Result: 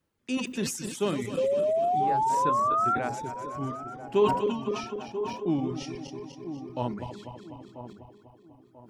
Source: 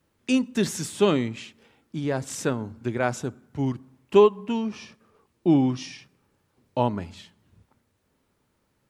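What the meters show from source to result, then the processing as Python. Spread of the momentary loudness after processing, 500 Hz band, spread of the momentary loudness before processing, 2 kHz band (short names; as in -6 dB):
17 LU, -3.5 dB, 17 LU, -5.0 dB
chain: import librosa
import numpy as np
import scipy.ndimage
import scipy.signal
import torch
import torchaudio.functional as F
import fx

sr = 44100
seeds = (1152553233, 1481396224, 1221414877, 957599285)

y = fx.reverse_delay_fb(x, sr, ms=124, feedback_pct=77, wet_db=-6.0)
y = fx.dereverb_blind(y, sr, rt60_s=0.97)
y = fx.spec_paint(y, sr, seeds[0], shape='rise', start_s=1.37, length_s=1.59, low_hz=510.0, high_hz=1400.0, level_db=-17.0)
y = fx.echo_wet_lowpass(y, sr, ms=989, feedback_pct=34, hz=1100.0, wet_db=-11.0)
y = fx.sustainer(y, sr, db_per_s=74.0)
y = F.gain(torch.from_numpy(y), -8.0).numpy()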